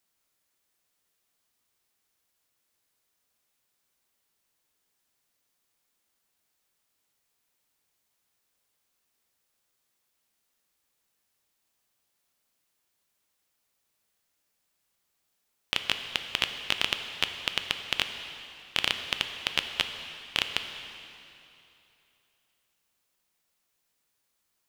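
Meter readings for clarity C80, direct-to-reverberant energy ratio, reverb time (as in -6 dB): 8.0 dB, 6.5 dB, 2.9 s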